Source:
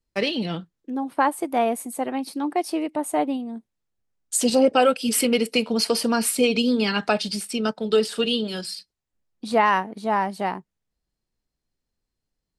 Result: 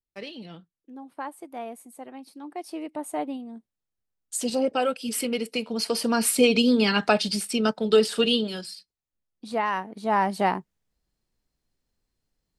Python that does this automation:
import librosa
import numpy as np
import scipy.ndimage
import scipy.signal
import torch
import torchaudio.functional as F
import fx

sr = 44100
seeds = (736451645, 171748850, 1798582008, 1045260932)

y = fx.gain(x, sr, db=fx.line((2.4, -14.5), (2.91, -7.0), (5.68, -7.0), (6.36, 1.0), (8.35, 1.0), (8.75, -7.5), (9.73, -7.5), (10.34, 3.0)))